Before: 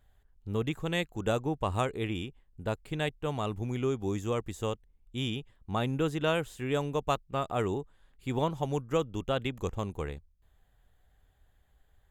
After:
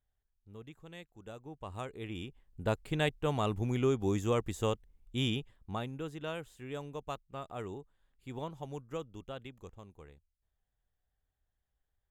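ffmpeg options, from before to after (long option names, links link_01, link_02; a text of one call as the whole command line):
ffmpeg -i in.wav -af "volume=1dB,afade=type=in:start_time=1.37:duration=0.7:silence=0.334965,afade=type=in:start_time=2.07:duration=0.58:silence=0.316228,afade=type=out:start_time=5.34:duration=0.56:silence=0.251189,afade=type=out:start_time=8.95:duration=0.88:silence=0.446684" out.wav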